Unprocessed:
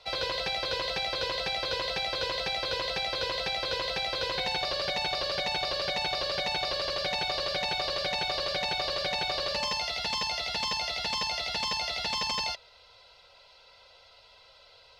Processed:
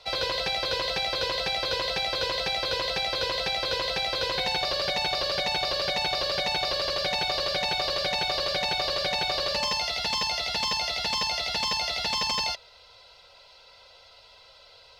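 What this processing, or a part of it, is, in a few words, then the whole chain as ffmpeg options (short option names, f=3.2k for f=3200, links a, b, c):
exciter from parts: -filter_complex "[0:a]asplit=2[a][b];[b]highpass=3.5k,asoftclip=type=tanh:threshold=-33.5dB,volume=-9dB[c];[a][c]amix=inputs=2:normalize=0,volume=3dB"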